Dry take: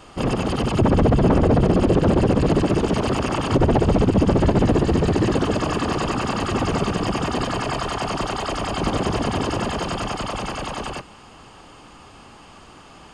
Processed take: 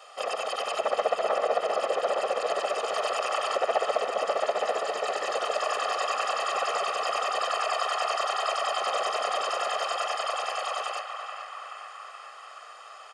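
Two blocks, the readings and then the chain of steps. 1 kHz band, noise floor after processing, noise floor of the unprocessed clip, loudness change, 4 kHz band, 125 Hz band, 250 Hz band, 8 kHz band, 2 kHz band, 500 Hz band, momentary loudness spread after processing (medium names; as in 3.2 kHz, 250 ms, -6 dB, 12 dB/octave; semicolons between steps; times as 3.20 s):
-1.5 dB, -46 dBFS, -45 dBFS, -7.5 dB, -1.5 dB, under -40 dB, -31.5 dB, -2.5 dB, -2.0 dB, -5.5 dB, 13 LU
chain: high-pass 530 Hz 24 dB/octave; comb 1.6 ms, depth 70%; band-passed feedback delay 428 ms, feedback 74%, band-pass 1.5 kHz, level -6 dB; trim -4.5 dB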